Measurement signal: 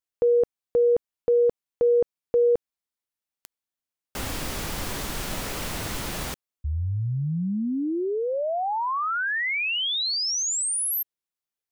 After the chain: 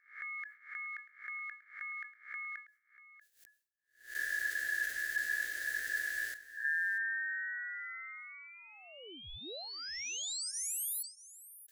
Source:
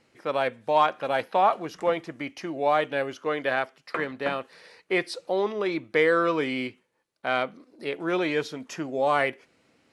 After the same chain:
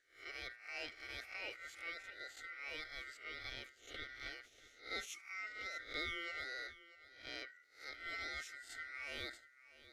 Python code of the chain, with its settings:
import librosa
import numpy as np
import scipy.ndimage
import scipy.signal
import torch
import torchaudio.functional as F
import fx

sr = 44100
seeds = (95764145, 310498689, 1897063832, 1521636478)

y = fx.spec_swells(x, sr, rise_s=0.39)
y = fx.tone_stack(y, sr, knobs='10-0-1')
y = fx.notch(y, sr, hz=7100.0, q=17.0)
y = np.clip(10.0 ** (31.0 / 20.0) * y, -1.0, 1.0) / 10.0 ** (31.0 / 20.0)
y = y * np.sin(2.0 * np.pi * 1700.0 * np.arange(len(y)) / sr)
y = fx.fixed_phaser(y, sr, hz=430.0, stages=4)
y = y + 10.0 ** (-17.0 / 20.0) * np.pad(y, (int(639 * sr / 1000.0), 0))[:len(y)]
y = fx.sustainer(y, sr, db_per_s=150.0)
y = y * 10.0 ** (10.5 / 20.0)